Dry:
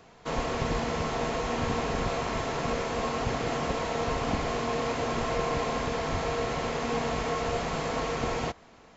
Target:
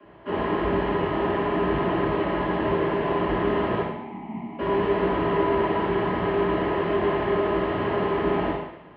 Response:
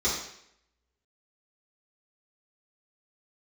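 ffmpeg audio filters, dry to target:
-filter_complex "[0:a]asettb=1/sr,asplit=3[s0][s1][s2];[s0]atrim=end=3.814[s3];[s1]atrim=start=3.81:end=4.59,asetpts=PTS-STARTPTS,afade=t=in:d=0.004:c=qsin,afade=t=out:st=0.776:d=0.004:c=qsin,asplit=3[s4][s5][s6];[s4]bandpass=f=300:t=q:w=8,volume=1[s7];[s5]bandpass=f=870:t=q:w=8,volume=0.501[s8];[s6]bandpass=f=2240:t=q:w=8,volume=0.355[s9];[s7][s8][s9]amix=inputs=3:normalize=0[s10];[s2]atrim=start=4.586[s11];[s3][s10]acrossfade=d=0.004:c1=hsin:c2=qsin[s12];[s12][s11]acrossfade=d=0.004:c1=qsin:c2=hsin,highpass=f=160:t=q:w=0.5412,highpass=f=160:t=q:w=1.307,lowpass=f=2900:t=q:w=0.5176,lowpass=f=2900:t=q:w=0.7071,lowpass=f=2900:t=q:w=1.932,afreqshift=-70[s13];[1:a]atrim=start_sample=2205,asetrate=37044,aresample=44100[s14];[s13][s14]afir=irnorm=-1:irlink=0,volume=0.447"

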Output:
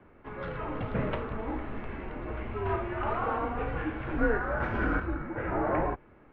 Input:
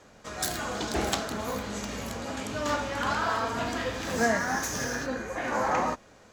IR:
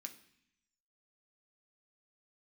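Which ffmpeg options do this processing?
-filter_complex "[0:a]lowshelf=f=390:g=9,highpass=f=210:t=q:w=0.5412,highpass=f=210:t=q:w=1.307,lowpass=f=2700:t=q:w=0.5176,lowpass=f=2700:t=q:w=0.7071,lowpass=f=2700:t=q:w=1.932,afreqshift=-200,asettb=1/sr,asplit=3[s0][s1][s2];[s0]atrim=end=4.604[s3];[s1]atrim=start=4.6:end=5,asetpts=PTS-STARTPTS,afade=t=in:d=0.004:c=qsin,afade=t=out:st=0.396:d=0.004:c=qsin,acontrast=54[s4];[s2]atrim=start=4.996[s5];[s3][s4]acrossfade=d=0.004:c1=hsin:c2=qsin[s6];[s6][s5]acrossfade=d=0.004:c1=qsin:c2=hsin,volume=0.668"

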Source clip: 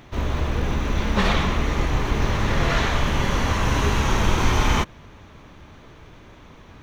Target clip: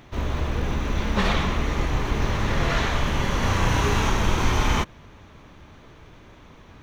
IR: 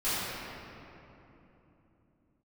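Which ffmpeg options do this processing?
-filter_complex "[0:a]asettb=1/sr,asplit=3[s0][s1][s2];[s0]atrim=end=3.394[s3];[s1]atrim=start=3.39:end=4.1,asetpts=PTS-STARTPTS,afade=t=in:d=0.004:c=qsin,afade=t=out:st=0.706:d=0.004:c=qsin,asplit=2[s4][s5];[s5]adelay=34,volume=0.75[s6];[s4][s6]amix=inputs=2:normalize=0,atrim=end_sample=31311[s7];[s2]atrim=start=4.096[s8];[s3][s7]acrossfade=d=0.004:c1=hsin:c2=qsin[s9];[s9][s8]acrossfade=d=0.004:c1=qsin:c2=hsin,volume=0.794"

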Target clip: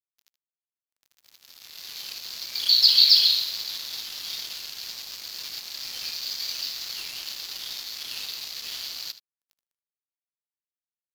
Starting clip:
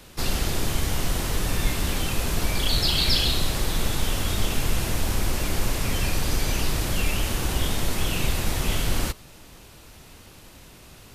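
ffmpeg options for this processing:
-af "aresample=16000,acrusher=bits=6:mode=log:mix=0:aa=0.000001,aresample=44100,acompressor=threshold=0.00891:ratio=1.5,bandpass=f=4500:t=q:w=5.5:csg=0,dynaudnorm=f=460:g=7:m=6.31,aeval=exprs='sgn(val(0))*max(abs(val(0))-0.0158,0)':c=same,aecho=1:1:76:0.188,volume=1.78"

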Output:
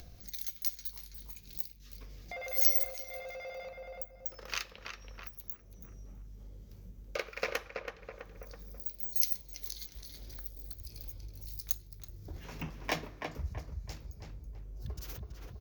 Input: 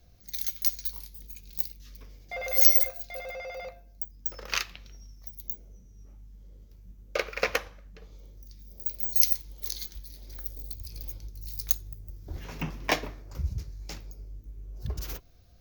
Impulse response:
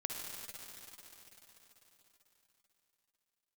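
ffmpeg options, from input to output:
-filter_complex "[0:a]asplit=2[s0][s1];[s1]adelay=328,lowpass=f=2000:p=1,volume=0.562,asplit=2[s2][s3];[s3]adelay=328,lowpass=f=2000:p=1,volume=0.4,asplit=2[s4][s5];[s5]adelay=328,lowpass=f=2000:p=1,volume=0.4,asplit=2[s6][s7];[s7]adelay=328,lowpass=f=2000:p=1,volume=0.4,asplit=2[s8][s9];[s9]adelay=328,lowpass=f=2000:p=1,volume=0.4[s10];[s0][s2][s4][s6][s8][s10]amix=inputs=6:normalize=0,acompressor=mode=upward:threshold=0.0282:ratio=2.5,volume=0.422"

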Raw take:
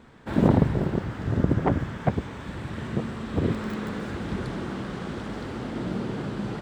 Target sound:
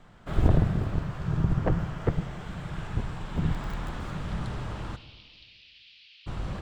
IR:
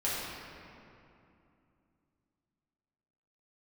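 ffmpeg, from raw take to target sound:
-filter_complex "[0:a]afreqshift=-250,asplit=3[s0][s1][s2];[s0]afade=t=out:st=4.95:d=0.02[s3];[s1]asuperpass=centerf=3500:order=8:qfactor=1.3,afade=t=in:st=4.95:d=0.02,afade=t=out:st=6.26:d=0.02[s4];[s2]afade=t=in:st=6.26:d=0.02[s5];[s3][s4][s5]amix=inputs=3:normalize=0,asplit=2[s6][s7];[1:a]atrim=start_sample=2205,asetrate=88200,aresample=44100[s8];[s7][s8]afir=irnorm=-1:irlink=0,volume=0.2[s9];[s6][s9]amix=inputs=2:normalize=0,volume=0.75"

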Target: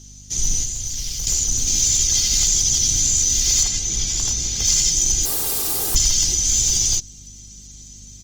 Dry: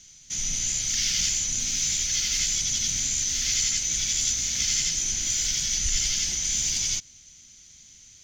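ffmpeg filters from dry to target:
-filter_complex "[0:a]asettb=1/sr,asplit=3[s0][s1][s2];[s0]atrim=end=5.254[s3];[s1]atrim=start=5.25:end=5.95,asetpts=PTS-STARTPTS,afade=t=in:d=0.004:c=qsin,afade=t=out:st=0.696:d=0.004:c=qsin,aeval=exprs='(mod(21.1*val(0)+1,2)-1)/21.1':c=same[s4];[s2]atrim=start=5.946[s5];[s3][s4]acrossfade=d=0.004:c1=hsin:c2=qsin[s6];[s6][s5]acrossfade=d=0.004:c1=qsin:c2=hsin,aecho=1:1:2.5:0.51,acontrast=75,equalizer=f=2000:t=o:w=1.8:g=-14,aeval=exprs='val(0)+0.00447*(sin(2*PI*50*n/s)+sin(2*PI*2*50*n/s)/2+sin(2*PI*3*50*n/s)/3+sin(2*PI*4*50*n/s)/4+sin(2*PI*5*50*n/s)/5)':c=same,aeval=exprs='clip(val(0),-1,0.2)':c=same,asettb=1/sr,asplit=3[s7][s8][s9];[s7]atrim=end=0.634[s10];[s8]atrim=start=0.63:end=1.27,asetpts=PTS-STARTPTS,afade=t=in:d=0.004:c=qsin,afade=t=out:st=0.636:d=0.004:c=qsin,acrossover=split=120|240|7600[s11][s12][s13][s14];[s11]acompressor=threshold=0.0355:ratio=4[s15];[s12]acompressor=threshold=0.00251:ratio=4[s16];[s13]acompressor=threshold=0.0282:ratio=4[s17];[s14]acompressor=threshold=0.0158:ratio=4[s18];[s15][s16][s17][s18]amix=inputs=4:normalize=0[s19];[s9]atrim=start=1.266[s20];[s10][s19]acrossfade=d=0.004:c1=hsin:c2=qsin[s21];[s21][s20]acrossfade=d=0.004:c1=qsin:c2=hsin,asettb=1/sr,asplit=3[s22][s23][s24];[s22]atrim=end=3.634[s25];[s23]atrim=start=3.63:end=4.65,asetpts=PTS-STARTPTS,afade=t=in:d=0.004:c=qsin,afade=t=out:st=1.016:d=0.004:c=qsin,highshelf=f=6600:g=-11[s26];[s24]atrim=start=4.646[s27];[s25][s26]acrossfade=d=0.004:c1=hsin:c2=qsin[s28];[s28][s27]acrossfade=d=0.004:c1=qsin:c2=hsin,volume=1.5" -ar 48000 -c:a libopus -b:a 24k

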